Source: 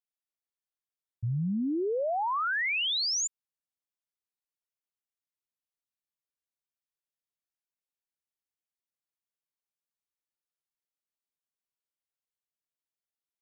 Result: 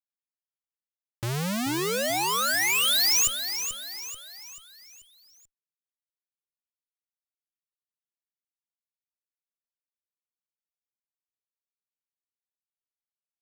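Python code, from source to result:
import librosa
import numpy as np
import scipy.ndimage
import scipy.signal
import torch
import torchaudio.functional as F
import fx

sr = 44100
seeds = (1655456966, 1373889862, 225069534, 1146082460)

y = fx.schmitt(x, sr, flips_db=-38.5)
y = fx.high_shelf(y, sr, hz=2400.0, db=8.0)
y = fx.echo_feedback(y, sr, ms=436, feedback_pct=46, wet_db=-9)
y = F.gain(torch.from_numpy(y), 8.5).numpy()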